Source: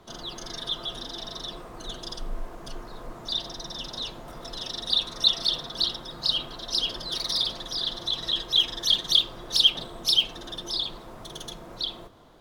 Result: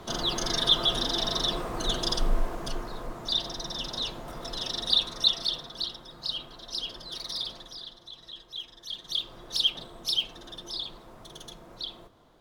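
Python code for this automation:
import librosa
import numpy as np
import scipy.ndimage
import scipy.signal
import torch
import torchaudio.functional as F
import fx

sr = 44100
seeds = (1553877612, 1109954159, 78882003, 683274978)

y = fx.gain(x, sr, db=fx.line((2.25, 8.5), (3.17, 1.5), (4.85, 1.5), (5.89, -7.5), (7.57, -7.5), (8.01, -17.0), (8.85, -17.0), (9.34, -6.0)))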